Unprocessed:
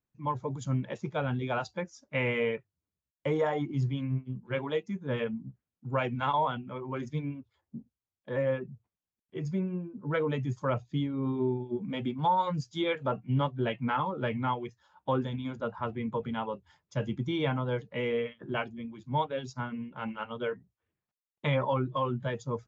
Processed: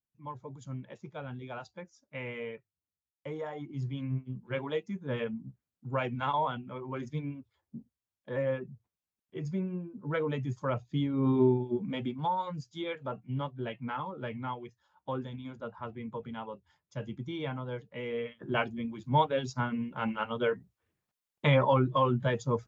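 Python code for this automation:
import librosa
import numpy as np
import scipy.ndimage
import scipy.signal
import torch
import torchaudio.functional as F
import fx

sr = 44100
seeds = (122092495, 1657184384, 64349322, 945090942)

y = fx.gain(x, sr, db=fx.line((3.56, -10.0), (4.09, -2.0), (10.85, -2.0), (11.38, 6.0), (12.47, -6.5), (18.05, -6.5), (18.65, 4.0)))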